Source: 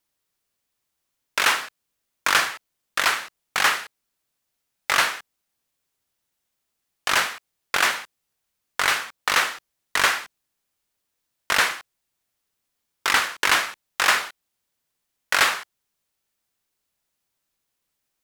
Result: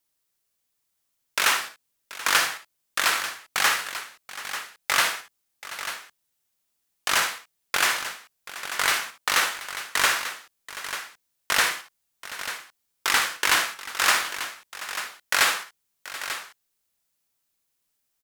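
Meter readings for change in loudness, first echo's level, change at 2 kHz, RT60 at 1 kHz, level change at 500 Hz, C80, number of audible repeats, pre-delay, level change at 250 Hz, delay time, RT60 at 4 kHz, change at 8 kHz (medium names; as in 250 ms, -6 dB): -2.5 dB, -12.0 dB, -2.0 dB, no reverb, -2.5 dB, no reverb, 3, no reverb, -2.5 dB, 56 ms, no reverb, +2.0 dB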